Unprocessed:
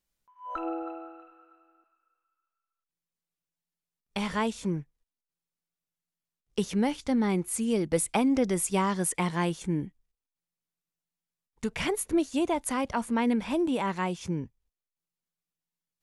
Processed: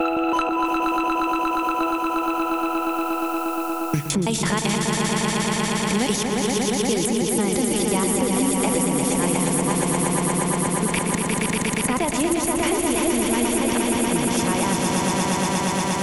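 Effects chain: slices played last to first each 164 ms, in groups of 6; treble shelf 8 kHz +10 dB; in parallel at -1 dB: compressor with a negative ratio -37 dBFS, ratio -1; on the sum: echo with a slow build-up 118 ms, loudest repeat 5, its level -5 dB; on a send at -15.5 dB: reverberation RT60 1.7 s, pre-delay 40 ms; on the sum: three bands compressed up and down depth 100%

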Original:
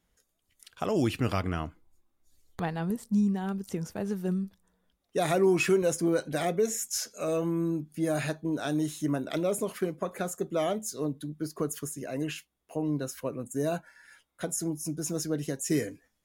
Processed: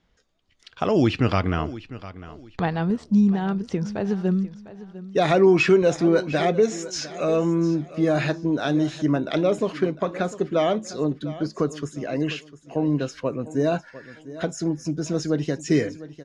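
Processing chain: low-pass 5.3 kHz 24 dB/octave; on a send: feedback delay 702 ms, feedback 28%, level -16 dB; on the sum: trim +7.5 dB

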